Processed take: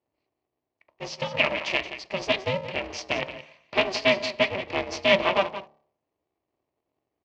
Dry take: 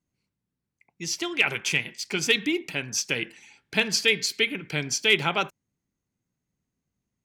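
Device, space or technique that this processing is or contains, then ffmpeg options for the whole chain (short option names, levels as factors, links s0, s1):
ring modulator pedal into a guitar cabinet: -filter_complex "[0:a]bandreject=f=69.34:t=h:w=4,bandreject=f=138.68:t=h:w=4,bandreject=f=208.02:t=h:w=4,bandreject=f=277.36:t=h:w=4,bandreject=f=346.7:t=h:w=4,bandreject=f=416.04:t=h:w=4,bandreject=f=485.38:t=h:w=4,bandreject=f=554.72:t=h:w=4,bandreject=f=624.06:t=h:w=4,bandreject=f=693.4:t=h:w=4,bandreject=f=762.74:t=h:w=4,bandreject=f=832.08:t=h:w=4,bandreject=f=901.42:t=h:w=4,bandreject=f=970.76:t=h:w=4,asettb=1/sr,asplit=3[s0][s1][s2];[s0]atrim=end=1.834[s3];[s1]atrim=start=1.83:end=2.68,asetpts=PTS-STARTPTS,afade=t=in:d=0.004:c=qsin,afade=t=out:st=0.846:d=0.004:c=qsin,equalizer=f=930:w=0.35:g=-5.5[s4];[s2]atrim=start=2.676[s5];[s3][s4]acrossfade=d=0.004:c1=hsin:c2=qsin[s6];[s6][s5]acrossfade=d=0.004:c1=qsin:c2=hsin,aecho=1:1:175:0.251,aeval=exprs='val(0)*sgn(sin(2*PI*190*n/s))':c=same,highpass=91,equalizer=f=610:t=q:w=4:g=10,equalizer=f=960:t=q:w=4:g=6,equalizer=f=1500:t=q:w=4:g=-8,equalizer=f=3600:t=q:w=4:g=-5,lowpass=f=4300:w=0.5412,lowpass=f=4300:w=1.3066"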